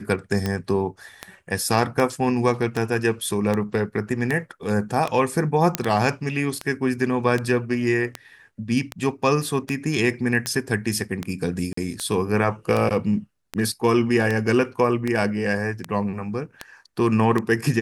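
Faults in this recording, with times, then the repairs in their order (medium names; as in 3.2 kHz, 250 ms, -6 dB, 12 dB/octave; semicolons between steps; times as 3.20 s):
tick 78 rpm -11 dBFS
5.75 s: pop -3 dBFS
11.73–11.77 s: dropout 44 ms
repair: de-click; interpolate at 11.73 s, 44 ms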